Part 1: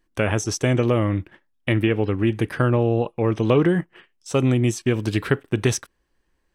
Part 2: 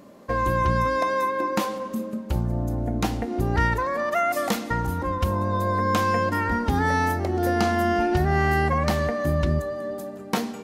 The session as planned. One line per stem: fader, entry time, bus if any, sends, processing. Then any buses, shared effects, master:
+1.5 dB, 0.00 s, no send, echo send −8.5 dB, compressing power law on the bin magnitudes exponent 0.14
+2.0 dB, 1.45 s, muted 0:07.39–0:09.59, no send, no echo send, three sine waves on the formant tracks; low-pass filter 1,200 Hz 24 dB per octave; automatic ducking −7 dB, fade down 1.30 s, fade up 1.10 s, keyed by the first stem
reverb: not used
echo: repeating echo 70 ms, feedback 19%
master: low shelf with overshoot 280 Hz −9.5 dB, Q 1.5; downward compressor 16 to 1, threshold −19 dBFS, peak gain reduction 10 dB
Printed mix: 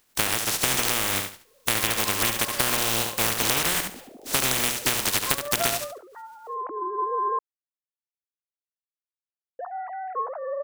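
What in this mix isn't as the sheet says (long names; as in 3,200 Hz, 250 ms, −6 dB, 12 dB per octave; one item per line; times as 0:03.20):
stem 2 +2.0 dB → −4.5 dB
master: missing low shelf with overshoot 280 Hz −9.5 dB, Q 1.5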